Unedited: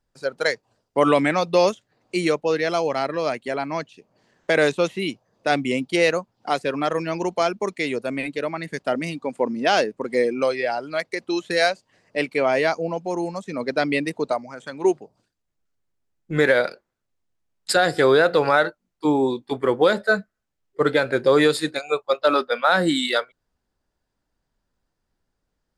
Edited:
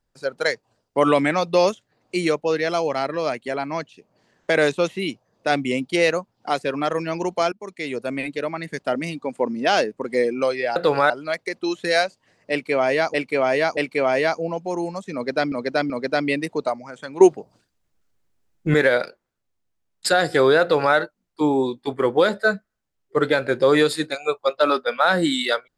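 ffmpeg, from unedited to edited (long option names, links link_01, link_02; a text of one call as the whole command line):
ffmpeg -i in.wav -filter_complex "[0:a]asplit=10[link_01][link_02][link_03][link_04][link_05][link_06][link_07][link_08][link_09][link_10];[link_01]atrim=end=7.52,asetpts=PTS-STARTPTS,afade=type=out:start_time=7.516:duration=0.004:curve=hsin:silence=0.11885[link_11];[link_02]atrim=start=7.52:end=10.762,asetpts=PTS-STARTPTS,afade=type=in:duration=0.55:silence=0.11885[link_12];[link_03]atrim=start=18.258:end=18.602[link_13];[link_04]atrim=start=10.758:end=12.802[link_14];[link_05]atrim=start=12.168:end=12.802[link_15];[link_06]atrim=start=12.168:end=13.922[link_16];[link_07]atrim=start=13.538:end=13.922[link_17];[link_08]atrim=start=13.538:end=14.852[link_18];[link_09]atrim=start=14.848:end=16.382,asetpts=PTS-STARTPTS,volume=7dB[link_19];[link_10]atrim=start=16.378[link_20];[link_11][link_12]concat=n=2:v=0:a=1[link_21];[link_21][link_13]acrossfade=duration=0.004:curve1=hsin:curve2=hsin[link_22];[link_22][link_14]acrossfade=duration=0.004:curve1=hsin:curve2=hsin[link_23];[link_23][link_15]acrossfade=duration=0.004:curve1=hsin:curve2=hsin[link_24];[link_24][link_16]acrossfade=duration=0.004:curve1=hsin:curve2=hsin[link_25];[link_25][link_17]acrossfade=duration=0.004:curve1=hsin:curve2=hsin[link_26];[link_26][link_18]acrossfade=duration=0.004:curve1=hsin:curve2=hsin[link_27];[link_27][link_19]acrossfade=duration=0.004:curve1=hsin:curve2=hsin[link_28];[link_28][link_20]acrossfade=duration=0.004:curve1=hsin:curve2=hsin" out.wav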